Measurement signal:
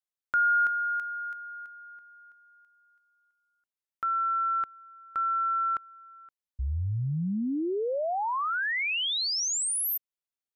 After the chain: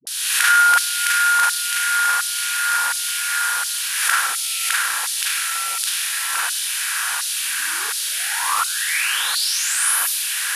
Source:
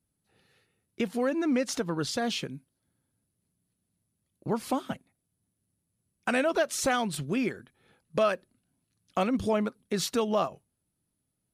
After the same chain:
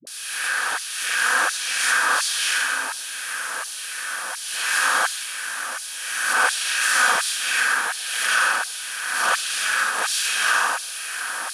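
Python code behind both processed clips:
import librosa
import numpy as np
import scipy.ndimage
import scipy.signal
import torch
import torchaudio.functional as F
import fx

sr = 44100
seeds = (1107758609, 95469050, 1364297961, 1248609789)

p1 = fx.bin_compress(x, sr, power=0.2)
p2 = fx.graphic_eq_31(p1, sr, hz=(400, 630, 1600, 10000), db=(-6, -9, 8, 10))
p3 = fx.rev_schroeder(p2, sr, rt60_s=1.1, comb_ms=33, drr_db=-8.5)
p4 = fx.filter_lfo_highpass(p3, sr, shape='saw_down', hz=1.4, low_hz=820.0, high_hz=4400.0, q=1.5)
p5 = scipy.signal.sosfilt(scipy.signal.butter(2, 110.0, 'highpass', fs=sr, output='sos'), p4)
p6 = fx.notch(p5, sr, hz=2100.0, q=18.0)
p7 = fx.dispersion(p6, sr, late='highs', ms=71.0, hz=400.0)
p8 = p7 + fx.echo_wet_bandpass(p7, sr, ms=523, feedback_pct=70, hz=450.0, wet_db=-22.5, dry=0)
p9 = fx.pre_swell(p8, sr, db_per_s=36.0)
y = F.gain(torch.from_numpy(p9), -8.5).numpy()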